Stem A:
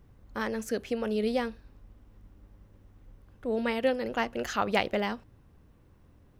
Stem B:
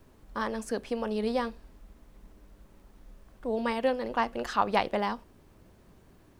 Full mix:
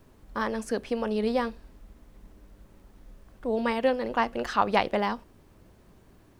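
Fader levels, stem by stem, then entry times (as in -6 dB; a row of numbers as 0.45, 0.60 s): -11.5, +1.0 dB; 0.00, 0.00 s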